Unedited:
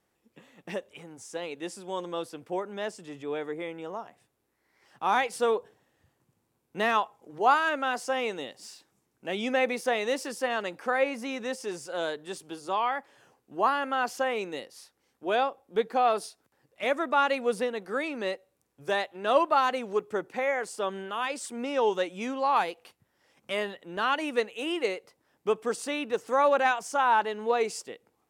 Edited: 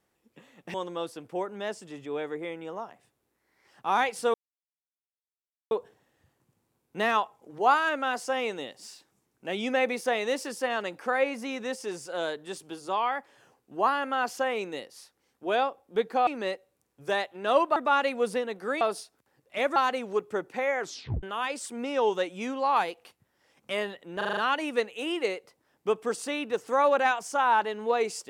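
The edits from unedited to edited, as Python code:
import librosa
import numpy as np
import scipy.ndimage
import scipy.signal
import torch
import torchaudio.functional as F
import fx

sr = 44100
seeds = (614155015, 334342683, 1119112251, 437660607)

y = fx.edit(x, sr, fx.cut(start_s=0.74, length_s=1.17),
    fx.insert_silence(at_s=5.51, length_s=1.37),
    fx.swap(start_s=16.07, length_s=0.95, other_s=18.07, other_length_s=1.49),
    fx.tape_stop(start_s=20.6, length_s=0.43),
    fx.stutter(start_s=23.97, slice_s=0.04, count=6), tone=tone)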